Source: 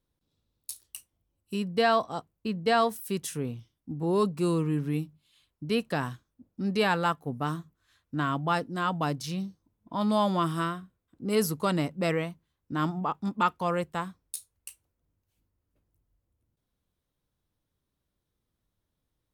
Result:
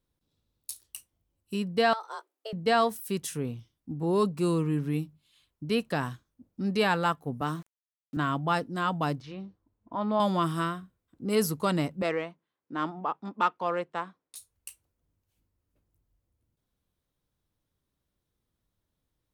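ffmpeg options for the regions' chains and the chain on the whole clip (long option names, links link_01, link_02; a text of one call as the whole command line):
ffmpeg -i in.wav -filter_complex "[0:a]asettb=1/sr,asplit=3[link_01][link_02][link_03];[link_01]atrim=end=1.934[link_04];[link_02]atrim=start=1.93:end=2.53,asetpts=PTS-STARTPTS,afade=type=in:duration=0.004:curve=qsin,afade=type=out:start_time=0.596:duration=0.004:curve=qsin,highpass=frequency=430:poles=1,acompressor=threshold=-33dB:ratio=5:attack=3.2:release=140:knee=1:detection=peak,afreqshift=220[link_05];[link_03]atrim=start=2.526[link_06];[link_04][link_05]acrossfade=duration=0.004:curve1=hsin:curve2=qsin[link_07];[link_07][link_06]acrossfade=duration=0.004:curve1=qsin:curve2=hsin,asettb=1/sr,asplit=3[link_08][link_09][link_10];[link_08]atrim=end=7.414[link_11];[link_09]atrim=start=7.41:end=8.17,asetpts=PTS-STARTPTS,afade=type=in:duration=0.004:curve=qsin,afade=type=out:start_time=0.756:duration=0.004:curve=qsin,highpass=frequency=140:width=0.5412,highpass=frequency=140:width=1.3066,aeval=exprs='val(0)*gte(abs(val(0)),0.00299)':channel_layout=same[link_12];[link_10]atrim=start=8.166[link_13];[link_11][link_12]acrossfade=duration=0.004:curve1=hsin:curve2=qsin[link_14];[link_14][link_13]acrossfade=duration=0.004:curve1=qsin:curve2=hsin,asettb=1/sr,asplit=3[link_15][link_16][link_17];[link_15]atrim=end=9.204[link_18];[link_16]atrim=start=9.2:end=10.2,asetpts=PTS-STARTPTS,afade=type=in:duration=0.004:curve=qsin,afade=type=out:start_time=0.996:duration=0.004:curve=qsin,lowpass=2000,equalizer=frequency=170:width_type=o:width=0.37:gain=-14[link_19];[link_17]atrim=start=10.196[link_20];[link_18][link_19]acrossfade=duration=0.004:curve1=hsin:curve2=qsin[link_21];[link_21][link_20]acrossfade=duration=0.004:curve1=qsin:curve2=hsin,asettb=1/sr,asplit=3[link_22][link_23][link_24];[link_22]atrim=end=12.024[link_25];[link_23]atrim=start=12.02:end=14.36,asetpts=PTS-STARTPTS,afade=type=in:duration=0.004:curve=qsin,afade=type=out:start_time=2.336:duration=0.004:curve=qsin,highpass=310,adynamicsmooth=sensitivity=1.5:basefreq=3500[link_26];[link_24]atrim=start=14.356[link_27];[link_25][link_26]acrossfade=duration=0.004:curve1=hsin:curve2=qsin[link_28];[link_28][link_27]acrossfade=duration=0.004:curve1=qsin:curve2=hsin" out.wav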